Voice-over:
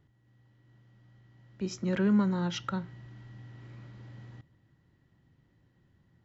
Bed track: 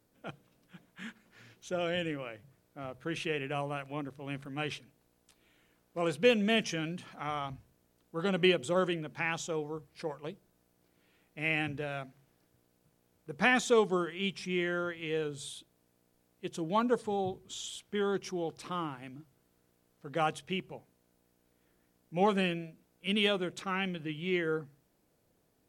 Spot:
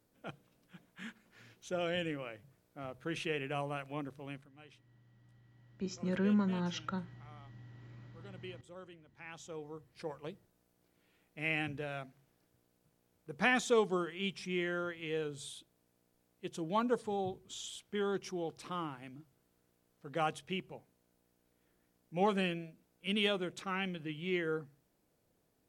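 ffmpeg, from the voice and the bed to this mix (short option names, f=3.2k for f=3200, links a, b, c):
-filter_complex "[0:a]adelay=4200,volume=-5dB[a];[1:a]volume=16dB,afade=t=out:st=4.19:d=0.31:silence=0.105925,afade=t=in:st=9.14:d=1.07:silence=0.11885[b];[a][b]amix=inputs=2:normalize=0"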